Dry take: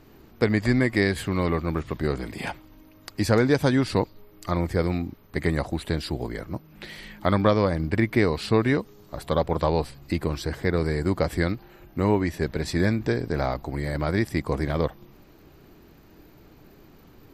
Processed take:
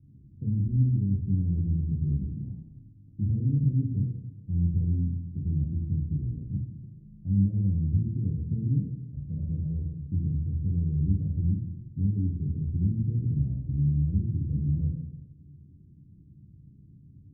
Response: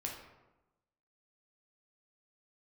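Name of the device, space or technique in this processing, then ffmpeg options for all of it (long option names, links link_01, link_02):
club heard from the street: -filter_complex "[0:a]alimiter=limit=-16.5dB:level=0:latency=1:release=11,lowpass=frequency=170:width=0.5412,lowpass=frequency=170:width=1.3066[link_01];[1:a]atrim=start_sample=2205[link_02];[link_01][link_02]afir=irnorm=-1:irlink=0,highpass=97,volume=6.5dB"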